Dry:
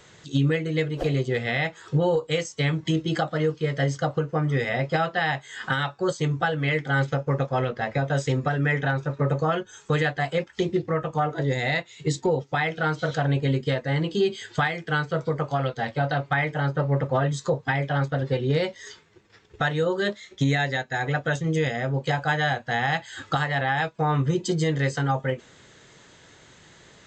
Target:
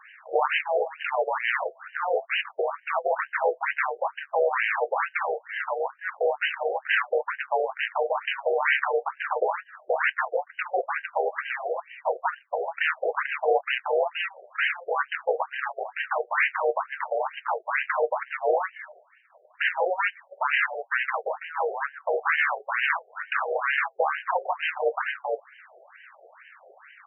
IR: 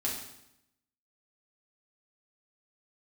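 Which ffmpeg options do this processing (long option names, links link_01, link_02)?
-filter_complex "[0:a]acrossover=split=310|1900[link_01][link_02][link_03];[link_02]acompressor=threshold=-36dB:ratio=8[link_04];[link_01][link_04][link_03]amix=inputs=3:normalize=0,aeval=exprs='0.224*(cos(1*acos(clip(val(0)/0.224,-1,1)))-cos(1*PI/2))+0.0355*(cos(3*acos(clip(val(0)/0.224,-1,1)))-cos(3*PI/2))+0.01*(cos(4*acos(clip(val(0)/0.224,-1,1)))-cos(4*PI/2))+0.0708*(cos(7*acos(clip(val(0)/0.224,-1,1)))-cos(7*PI/2))+0.1*(cos(8*acos(clip(val(0)/0.224,-1,1)))-cos(8*PI/2))':channel_layout=same,aeval=exprs='val(0)*sin(2*PI*190*n/s)':channel_layout=same,afftfilt=real='re*between(b*sr/1024,540*pow(2200/540,0.5+0.5*sin(2*PI*2.2*pts/sr))/1.41,540*pow(2200/540,0.5+0.5*sin(2*PI*2.2*pts/sr))*1.41)':imag='im*between(b*sr/1024,540*pow(2200/540,0.5+0.5*sin(2*PI*2.2*pts/sr))/1.41,540*pow(2200/540,0.5+0.5*sin(2*PI*2.2*pts/sr))*1.41)':win_size=1024:overlap=0.75,volume=7dB"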